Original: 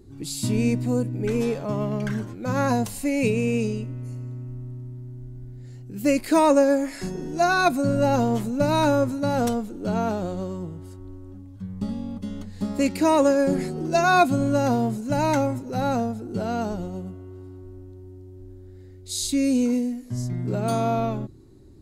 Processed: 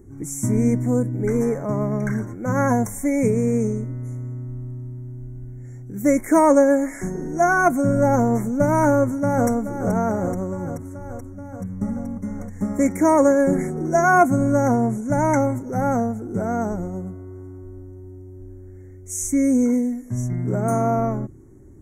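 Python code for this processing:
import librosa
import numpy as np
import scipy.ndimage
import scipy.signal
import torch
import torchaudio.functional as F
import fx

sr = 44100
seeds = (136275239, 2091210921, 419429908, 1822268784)

y = fx.echo_throw(x, sr, start_s=8.94, length_s=0.54, ms=430, feedback_pct=75, wet_db=-9.5)
y = fx.brickwall_lowpass(y, sr, high_hz=12000.0, at=(14.68, 15.4))
y = scipy.signal.sosfilt(scipy.signal.cheby1(5, 1.0, [2200.0, 5700.0], 'bandstop', fs=sr, output='sos'), y)
y = y * 10.0 ** (3.5 / 20.0)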